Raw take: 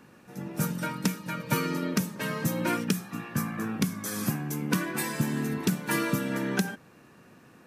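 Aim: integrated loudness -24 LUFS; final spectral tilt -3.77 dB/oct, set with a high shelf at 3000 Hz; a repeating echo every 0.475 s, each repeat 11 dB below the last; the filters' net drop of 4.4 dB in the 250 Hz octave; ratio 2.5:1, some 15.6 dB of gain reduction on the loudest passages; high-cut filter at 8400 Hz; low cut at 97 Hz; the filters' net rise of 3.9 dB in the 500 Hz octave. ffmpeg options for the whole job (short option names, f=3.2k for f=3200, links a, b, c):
-af "highpass=97,lowpass=8.4k,equalizer=f=250:t=o:g=-8,equalizer=f=500:t=o:g=7,highshelf=f=3k:g=6.5,acompressor=threshold=-47dB:ratio=2.5,aecho=1:1:475|950|1425:0.282|0.0789|0.0221,volume=19.5dB"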